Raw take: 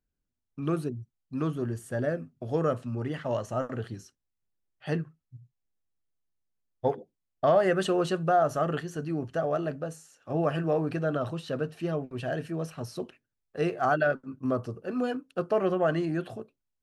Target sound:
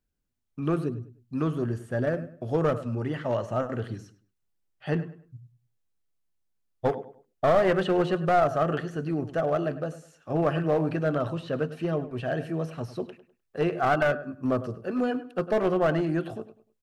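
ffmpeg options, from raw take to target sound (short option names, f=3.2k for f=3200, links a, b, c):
-filter_complex "[0:a]acrossover=split=3500[a][b];[b]acompressor=threshold=-59dB:ratio=4:attack=1:release=60[c];[a][c]amix=inputs=2:normalize=0,asplit=2[d][e];[e]adelay=101,lowpass=f=3.3k:p=1,volume=-14dB,asplit=2[f][g];[g]adelay=101,lowpass=f=3.3k:p=1,volume=0.3,asplit=2[h][i];[i]adelay=101,lowpass=f=3.3k:p=1,volume=0.3[j];[f][h][j]amix=inputs=3:normalize=0[k];[d][k]amix=inputs=2:normalize=0,aeval=exprs='clip(val(0),-1,0.0631)':c=same,volume=2.5dB"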